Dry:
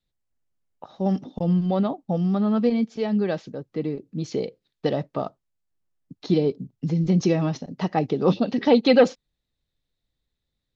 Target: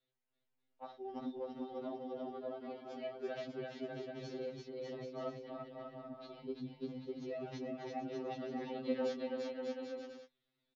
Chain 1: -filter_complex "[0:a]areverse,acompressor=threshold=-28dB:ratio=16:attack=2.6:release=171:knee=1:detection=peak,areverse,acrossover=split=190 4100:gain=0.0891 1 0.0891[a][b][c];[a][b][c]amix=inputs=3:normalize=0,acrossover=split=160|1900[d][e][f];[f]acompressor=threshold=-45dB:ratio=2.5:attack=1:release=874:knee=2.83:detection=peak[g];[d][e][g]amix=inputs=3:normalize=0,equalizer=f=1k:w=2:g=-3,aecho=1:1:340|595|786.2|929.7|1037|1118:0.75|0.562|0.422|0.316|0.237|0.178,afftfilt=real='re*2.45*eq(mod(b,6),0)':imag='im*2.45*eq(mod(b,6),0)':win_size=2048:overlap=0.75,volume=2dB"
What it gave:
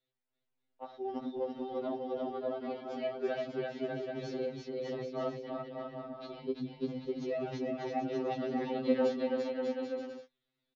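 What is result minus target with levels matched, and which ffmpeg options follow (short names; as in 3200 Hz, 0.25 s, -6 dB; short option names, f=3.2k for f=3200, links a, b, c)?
compressor: peak gain reduction -7.5 dB
-filter_complex "[0:a]areverse,acompressor=threshold=-36dB:ratio=16:attack=2.6:release=171:knee=1:detection=peak,areverse,acrossover=split=190 4100:gain=0.0891 1 0.0891[a][b][c];[a][b][c]amix=inputs=3:normalize=0,acrossover=split=160|1900[d][e][f];[f]acompressor=threshold=-45dB:ratio=2.5:attack=1:release=874:knee=2.83:detection=peak[g];[d][e][g]amix=inputs=3:normalize=0,equalizer=f=1k:w=2:g=-3,aecho=1:1:340|595|786.2|929.7|1037|1118:0.75|0.562|0.422|0.316|0.237|0.178,afftfilt=real='re*2.45*eq(mod(b,6),0)':imag='im*2.45*eq(mod(b,6),0)':win_size=2048:overlap=0.75,volume=2dB"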